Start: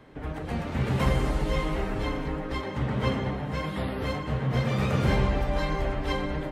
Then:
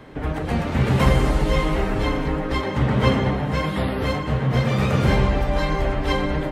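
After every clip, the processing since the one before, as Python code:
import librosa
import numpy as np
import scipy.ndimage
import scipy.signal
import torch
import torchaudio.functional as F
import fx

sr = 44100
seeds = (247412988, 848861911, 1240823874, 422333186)

y = fx.rider(x, sr, range_db=4, speed_s=2.0)
y = y * librosa.db_to_amplitude(6.5)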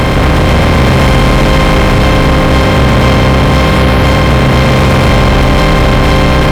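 y = fx.bin_compress(x, sr, power=0.2)
y = fx.leveller(y, sr, passes=3)
y = y * librosa.db_to_amplitude(-1.0)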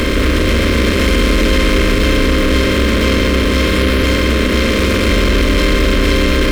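y = fx.dmg_crackle(x, sr, seeds[0], per_s=330.0, level_db=-21.0)
y = fx.fixed_phaser(y, sr, hz=330.0, stages=4)
y = y * librosa.db_to_amplitude(-1.5)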